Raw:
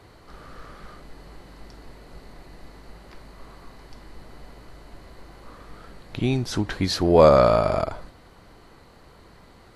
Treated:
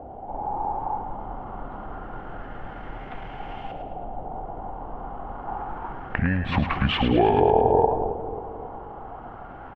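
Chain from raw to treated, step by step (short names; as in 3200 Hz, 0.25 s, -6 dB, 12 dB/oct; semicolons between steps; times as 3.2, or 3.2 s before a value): bell 1100 Hz +11.5 dB 0.34 oct; compressor 3:1, threshold -28 dBFS, peak gain reduction 15.5 dB; LFO low-pass saw up 0.27 Hz 910–3700 Hz; pitch shift -6 st; split-band echo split 610 Hz, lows 0.269 s, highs 0.107 s, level -7.5 dB; gain +6.5 dB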